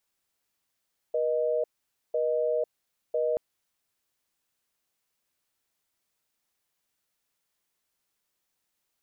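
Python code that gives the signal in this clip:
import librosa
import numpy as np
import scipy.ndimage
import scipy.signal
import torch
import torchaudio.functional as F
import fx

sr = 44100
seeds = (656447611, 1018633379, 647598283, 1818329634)

y = fx.call_progress(sr, length_s=2.23, kind='busy tone', level_db=-26.5)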